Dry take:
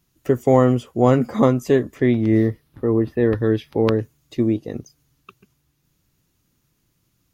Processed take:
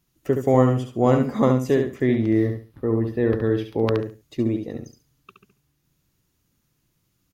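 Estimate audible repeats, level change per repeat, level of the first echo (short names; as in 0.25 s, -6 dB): 3, -13.0 dB, -6.0 dB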